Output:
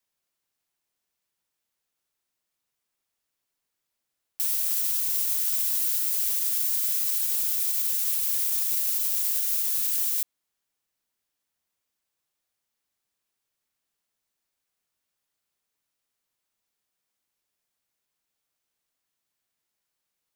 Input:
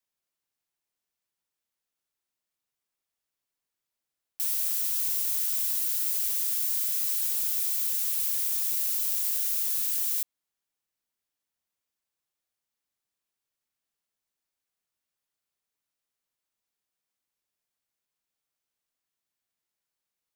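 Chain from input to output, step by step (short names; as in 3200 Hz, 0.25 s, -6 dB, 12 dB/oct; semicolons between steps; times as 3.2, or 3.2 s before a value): limiter -20 dBFS, peak gain reduction 6 dB; gain +4.5 dB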